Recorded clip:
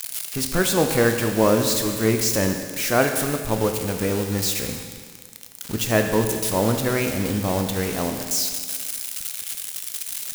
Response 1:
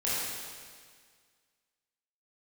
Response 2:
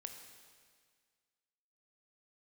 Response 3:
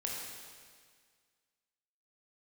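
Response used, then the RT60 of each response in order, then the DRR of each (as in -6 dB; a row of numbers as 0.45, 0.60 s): 2; 1.8, 1.8, 1.8 s; -10.0, 4.5, -3.0 dB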